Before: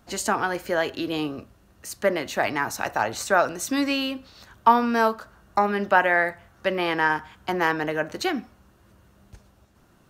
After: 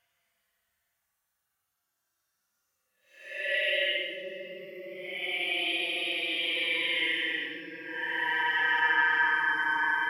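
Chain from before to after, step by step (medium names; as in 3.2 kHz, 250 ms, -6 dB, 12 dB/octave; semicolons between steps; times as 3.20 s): spectral noise reduction 20 dB; pre-emphasis filter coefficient 0.97; Paulstretch 14×, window 0.05 s, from 6.41 s; trim +9 dB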